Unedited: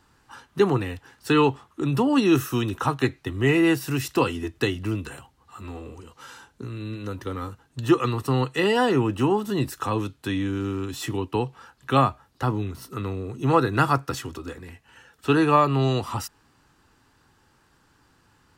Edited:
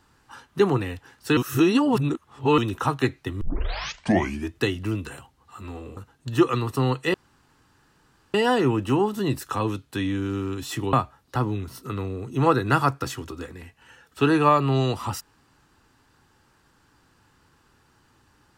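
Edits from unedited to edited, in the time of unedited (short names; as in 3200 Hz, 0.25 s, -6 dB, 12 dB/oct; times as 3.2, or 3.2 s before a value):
1.37–2.58 reverse
3.41 tape start 1.10 s
5.97–7.48 cut
8.65 insert room tone 1.20 s
11.24–12 cut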